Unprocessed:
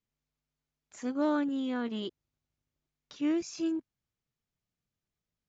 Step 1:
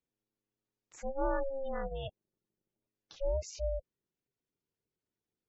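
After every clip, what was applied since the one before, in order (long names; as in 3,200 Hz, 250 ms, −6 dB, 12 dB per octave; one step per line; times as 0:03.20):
ring modulation 270 Hz
gate on every frequency bin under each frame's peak −20 dB strong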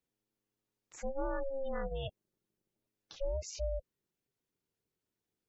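dynamic equaliser 770 Hz, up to −4 dB, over −49 dBFS, Q 2.4
downward compressor, threshold −33 dBFS, peak gain reduction 6 dB
level +2 dB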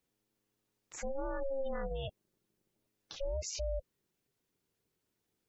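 brickwall limiter −34.5 dBFS, peak gain reduction 9 dB
level +5.5 dB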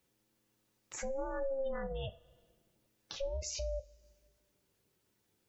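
coupled-rooms reverb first 0.25 s, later 1.5 s, from −22 dB, DRR 8 dB
downward compressor 1.5 to 1, threshold −51 dBFS, peak gain reduction 7.5 dB
level +5 dB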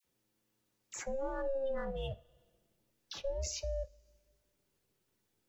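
all-pass dispersion lows, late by 46 ms, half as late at 1,400 Hz
in parallel at −5.5 dB: slack as between gear wheels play −49 dBFS
on the sum: level −3 dB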